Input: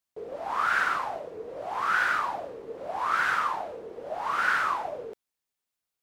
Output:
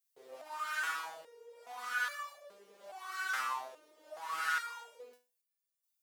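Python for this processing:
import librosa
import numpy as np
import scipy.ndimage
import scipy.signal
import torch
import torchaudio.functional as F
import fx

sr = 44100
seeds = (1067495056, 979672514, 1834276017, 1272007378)

y = fx.tilt_eq(x, sr, slope=4.5)
y = fx.resonator_held(y, sr, hz=2.4, low_hz=130.0, high_hz=580.0)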